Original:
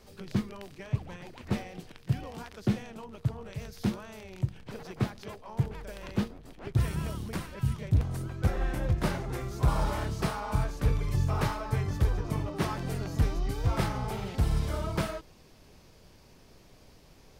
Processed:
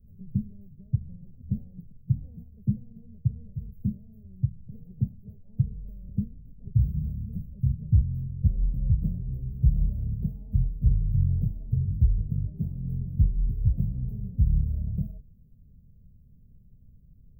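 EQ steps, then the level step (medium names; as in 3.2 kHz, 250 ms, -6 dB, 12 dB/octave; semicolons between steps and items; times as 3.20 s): inverse Chebyshev band-stop 1.3–6.7 kHz, stop band 80 dB; static phaser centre 1.2 kHz, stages 6; +5.5 dB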